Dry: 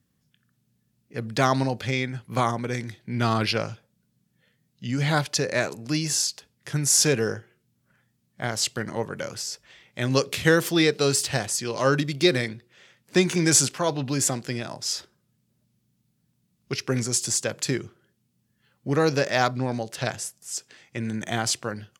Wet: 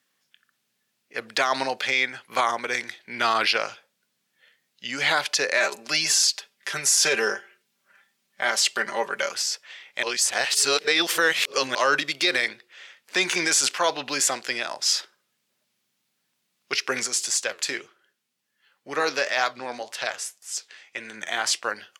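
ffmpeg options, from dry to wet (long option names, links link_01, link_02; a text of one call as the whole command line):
ffmpeg -i in.wav -filter_complex "[0:a]asettb=1/sr,asplit=3[link_01][link_02][link_03];[link_01]atrim=end=5.564[link_04];[link_02]atrim=start=5.56:end=9.33,asetpts=PTS-STARTPTS,afade=type=in:duration=0.004:curve=qsin,afade=type=out:start_time=3.766:duration=0.004:curve=qsin,aecho=1:1:5.1:0.65,atrim=end_sample=166257[link_05];[link_03]atrim=start=9.326[link_06];[link_04][link_05]acrossfade=duration=0.004:curve1=hsin:curve2=qsin[link_07];[link_07][link_06]acrossfade=duration=0.004:curve1=qsin:curve2=hsin,asplit=3[link_08][link_09][link_10];[link_08]afade=type=out:start_time=17.06:duration=0.02[link_11];[link_09]flanger=delay=6.1:depth=6.3:regen=74:speed=1.9:shape=sinusoidal,afade=type=in:start_time=17.06:duration=0.02,afade=type=out:start_time=21.63:duration=0.02[link_12];[link_10]afade=type=in:start_time=21.63:duration=0.02[link_13];[link_11][link_12][link_13]amix=inputs=3:normalize=0,asplit=3[link_14][link_15][link_16];[link_14]atrim=end=10.032[link_17];[link_15]atrim=start=10.028:end=11.752,asetpts=PTS-STARTPTS,areverse[link_18];[link_16]atrim=start=11.748[link_19];[link_17][link_18]acrossfade=duration=0.004:curve1=hsin:curve2=hsin[link_20];[link_20][link_19]acrossfade=duration=0.004:curve1=hsin:curve2=hsin,highpass=520,equalizer=frequency=2400:width_type=o:width=2.7:gain=7.5,alimiter=level_in=11dB:limit=-1dB:release=50:level=0:latency=1,volume=-9dB" out.wav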